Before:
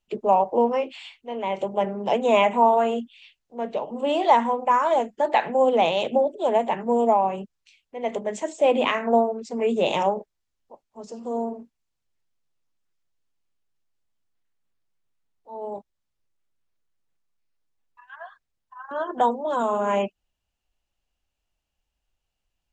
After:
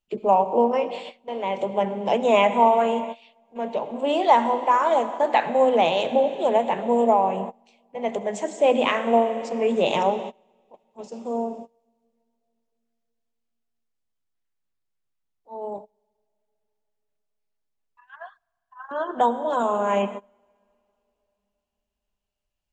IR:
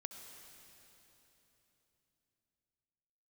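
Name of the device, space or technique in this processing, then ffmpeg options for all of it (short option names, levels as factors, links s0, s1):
keyed gated reverb: -filter_complex "[0:a]asplit=3[s0][s1][s2];[1:a]atrim=start_sample=2205[s3];[s1][s3]afir=irnorm=-1:irlink=0[s4];[s2]apad=whole_len=1002039[s5];[s4][s5]sidechaingate=range=0.0501:threshold=0.01:ratio=16:detection=peak,volume=1.58[s6];[s0][s6]amix=inputs=2:normalize=0,volume=0.562"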